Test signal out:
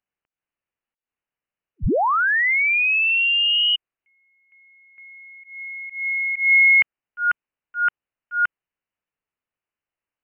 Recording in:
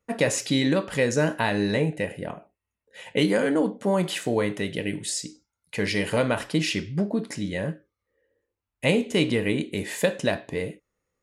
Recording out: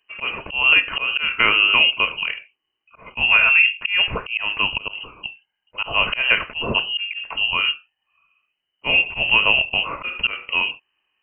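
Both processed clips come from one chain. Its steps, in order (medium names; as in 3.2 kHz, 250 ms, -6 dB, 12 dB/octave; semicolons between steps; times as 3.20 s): slow attack 177 ms; frequency inversion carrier 3 kHz; trim +8 dB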